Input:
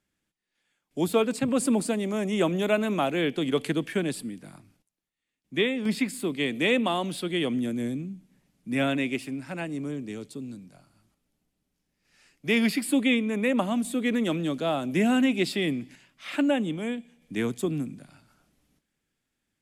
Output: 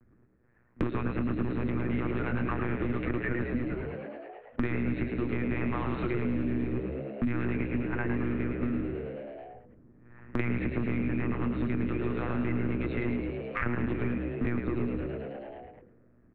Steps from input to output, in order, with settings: level-controlled noise filter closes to 710 Hz, open at -23.5 dBFS; comb 3.4 ms, depth 76%; waveshaping leveller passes 3; compression 12:1, threshold -22 dBFS, peak gain reduction 11 dB; static phaser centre 1.4 kHz, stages 4; monotone LPC vocoder at 8 kHz 120 Hz; tempo 1.2×; frequency-shifting echo 107 ms, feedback 53%, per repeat +70 Hz, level -6 dB; three bands compressed up and down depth 100%; trim -3.5 dB

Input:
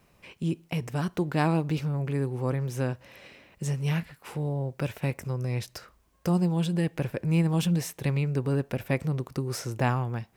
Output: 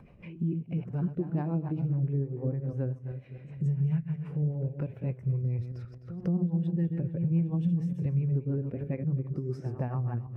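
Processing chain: backward echo that repeats 130 ms, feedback 51%, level -7 dB; rotary cabinet horn 7 Hz; upward compressor, threshold -31 dBFS; treble shelf 3.3 kHz -11.5 dB; pre-echo 173 ms -13 dB; compression 6:1, threshold -28 dBFS, peak gain reduction 8.5 dB; spectral contrast expander 1.5:1

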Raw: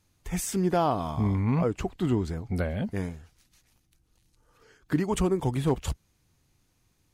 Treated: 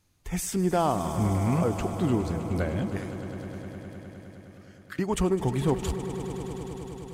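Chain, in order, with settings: 2.97–4.99 s: elliptic high-pass 1.2 kHz; echo with a slow build-up 103 ms, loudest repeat 5, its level -15.5 dB

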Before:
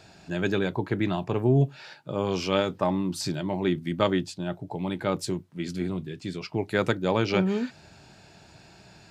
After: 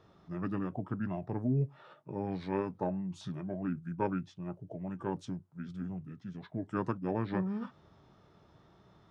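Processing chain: resonant high shelf 2.2 kHz -8.5 dB, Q 1.5; formant shift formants -5 st; trim -9 dB

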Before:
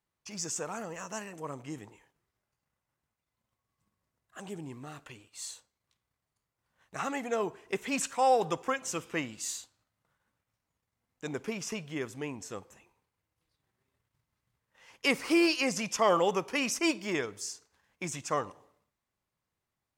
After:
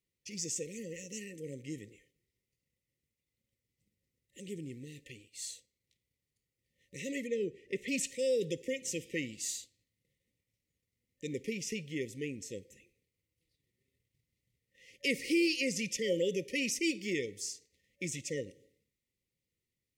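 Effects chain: 7.27–7.88 s: low-pass 3 kHz 6 dB/octave; FFT band-reject 570–1800 Hz; in parallel at 0 dB: peak limiter -25 dBFS, peak gain reduction 10.5 dB; on the sum: trim -7 dB

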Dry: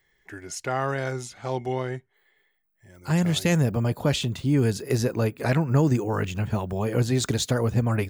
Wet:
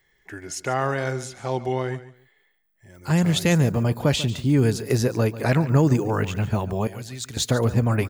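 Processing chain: 6.87–7.37 s: amplifier tone stack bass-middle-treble 5-5-5; feedback delay 143 ms, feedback 21%, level -15.5 dB; trim +2.5 dB

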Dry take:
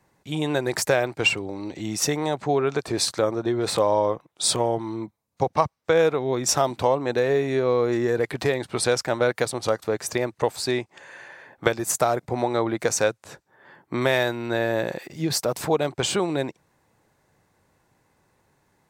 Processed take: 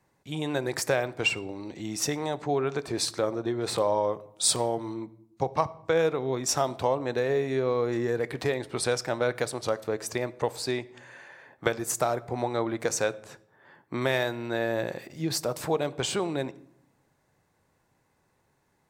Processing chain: 4.13–4.94 s: treble shelf 6.1 kHz +7 dB; on a send: reverberation RT60 0.70 s, pre-delay 7 ms, DRR 16 dB; on the sum: trim -5 dB

